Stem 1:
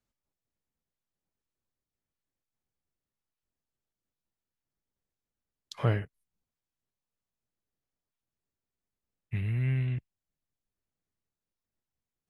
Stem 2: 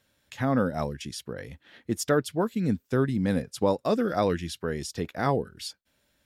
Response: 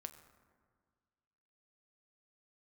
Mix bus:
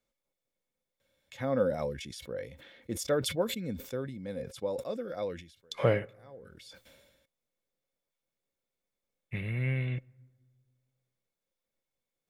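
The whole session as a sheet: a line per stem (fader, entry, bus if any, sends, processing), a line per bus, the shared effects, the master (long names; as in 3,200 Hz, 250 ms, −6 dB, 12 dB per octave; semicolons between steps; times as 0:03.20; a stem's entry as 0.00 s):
0.0 dB, 0.00 s, send −11.5 dB, parametric band 77 Hz −13 dB 0.93 octaves
0:03.43 −9 dB → 0:04.16 −16.5 dB, 1.00 s, no send, level that may fall only so fast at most 42 dB per second; automatic ducking −24 dB, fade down 0.35 s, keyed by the first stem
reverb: on, RT60 1.8 s, pre-delay 6 ms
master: hollow resonant body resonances 530/2,200/3,500 Hz, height 13 dB, ringing for 45 ms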